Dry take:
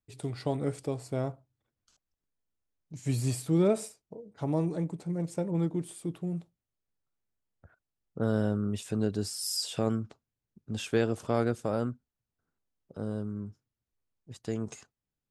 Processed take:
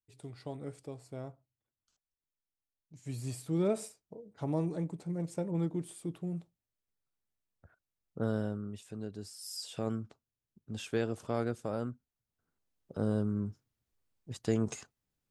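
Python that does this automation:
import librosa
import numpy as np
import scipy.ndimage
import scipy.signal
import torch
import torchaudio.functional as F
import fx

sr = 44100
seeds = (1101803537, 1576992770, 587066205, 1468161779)

y = fx.gain(x, sr, db=fx.line((3.04, -11.0), (3.85, -3.5), (8.24, -3.5), (8.81, -12.0), (9.37, -12.0), (9.91, -5.5), (11.84, -5.5), (13.01, 3.5)))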